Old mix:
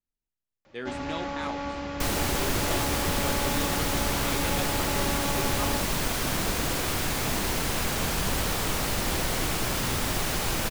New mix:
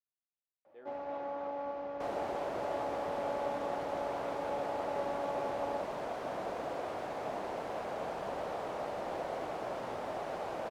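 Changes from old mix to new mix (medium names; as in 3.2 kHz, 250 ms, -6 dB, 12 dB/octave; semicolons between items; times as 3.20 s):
speech -9.5 dB; master: add band-pass filter 640 Hz, Q 2.4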